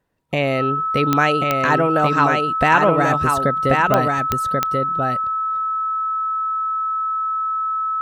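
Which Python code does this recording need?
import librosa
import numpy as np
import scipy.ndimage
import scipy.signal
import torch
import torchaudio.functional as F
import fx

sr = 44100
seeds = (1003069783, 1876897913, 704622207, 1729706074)

y = fx.fix_declick_ar(x, sr, threshold=10.0)
y = fx.notch(y, sr, hz=1300.0, q=30.0)
y = fx.fix_echo_inverse(y, sr, delay_ms=1086, level_db=-3.5)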